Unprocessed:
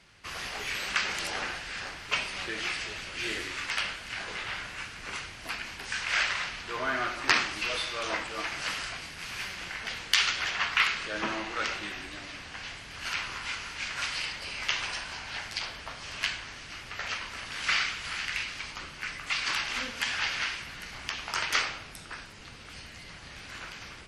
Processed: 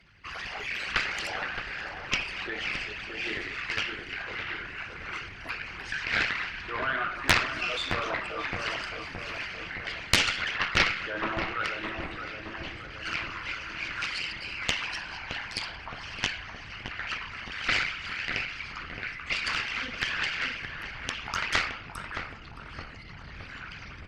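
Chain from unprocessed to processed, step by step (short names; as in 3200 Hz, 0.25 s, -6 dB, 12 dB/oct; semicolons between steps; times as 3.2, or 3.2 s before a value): formant sharpening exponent 2; added harmonics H 4 -8 dB, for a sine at -5 dBFS; on a send: darkening echo 0.618 s, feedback 66%, low-pass 1200 Hz, level -5 dB; on the sum: Doppler distortion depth 0.67 ms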